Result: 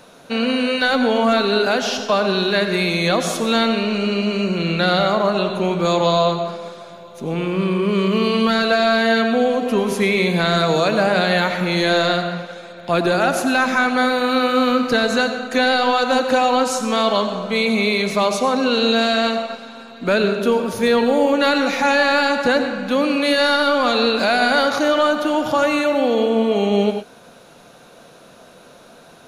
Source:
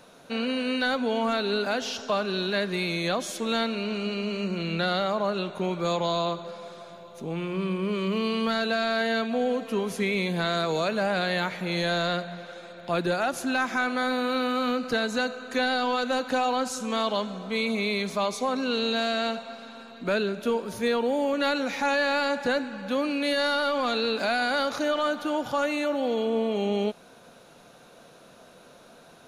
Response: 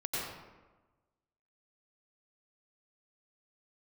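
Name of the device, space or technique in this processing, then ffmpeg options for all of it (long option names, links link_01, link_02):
keyed gated reverb: -filter_complex "[0:a]asplit=3[link_01][link_02][link_03];[1:a]atrim=start_sample=2205[link_04];[link_02][link_04]afir=irnorm=-1:irlink=0[link_05];[link_03]apad=whole_len=1291033[link_06];[link_05][link_06]sidechaingate=range=-33dB:threshold=-39dB:ratio=16:detection=peak,volume=-9.5dB[link_07];[link_01][link_07]amix=inputs=2:normalize=0,volume=6.5dB"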